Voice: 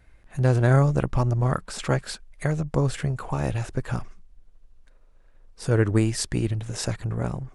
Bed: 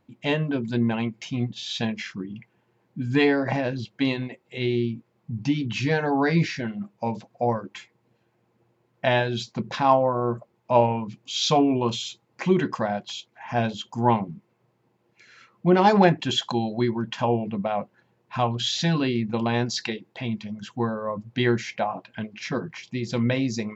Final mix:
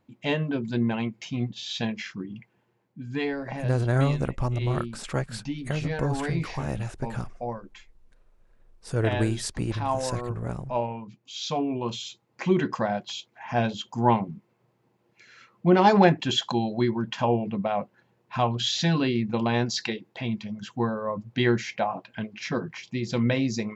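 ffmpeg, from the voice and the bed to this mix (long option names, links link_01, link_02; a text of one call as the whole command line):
ffmpeg -i stem1.wav -i stem2.wav -filter_complex "[0:a]adelay=3250,volume=-4.5dB[link_01];[1:a]volume=6.5dB,afade=type=out:start_time=2.63:duration=0.31:silence=0.446684,afade=type=in:start_time=11.48:duration=1.33:silence=0.375837[link_02];[link_01][link_02]amix=inputs=2:normalize=0" out.wav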